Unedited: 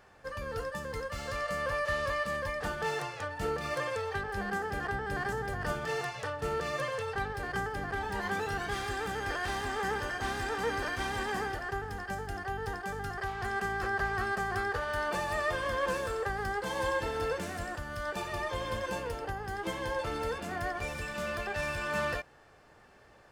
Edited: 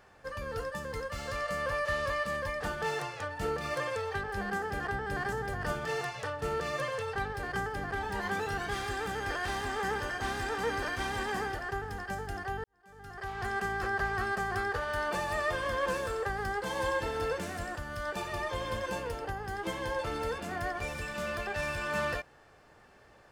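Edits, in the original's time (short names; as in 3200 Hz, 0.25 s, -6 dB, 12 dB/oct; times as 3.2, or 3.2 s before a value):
12.64–13.39 fade in quadratic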